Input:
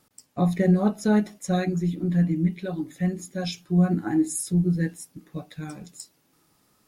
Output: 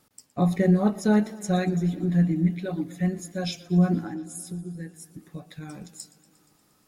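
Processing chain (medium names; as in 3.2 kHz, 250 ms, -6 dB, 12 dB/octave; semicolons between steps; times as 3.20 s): 4.03–5.74 s: compression 4:1, threshold -35 dBFS, peak gain reduction 15 dB; modulated delay 118 ms, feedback 74%, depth 83 cents, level -20 dB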